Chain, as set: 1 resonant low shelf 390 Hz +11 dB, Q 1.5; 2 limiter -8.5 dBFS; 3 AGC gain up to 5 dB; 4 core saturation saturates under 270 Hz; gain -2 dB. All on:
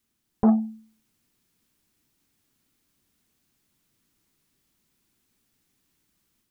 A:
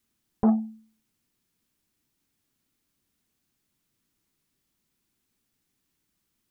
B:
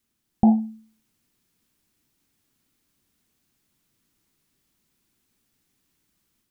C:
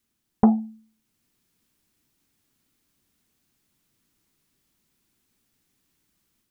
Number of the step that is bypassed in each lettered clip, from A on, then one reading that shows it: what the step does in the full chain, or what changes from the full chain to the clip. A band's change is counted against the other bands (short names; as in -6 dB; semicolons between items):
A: 3, loudness change -1.5 LU; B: 4, crest factor change -1.5 dB; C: 2, crest factor change +4.0 dB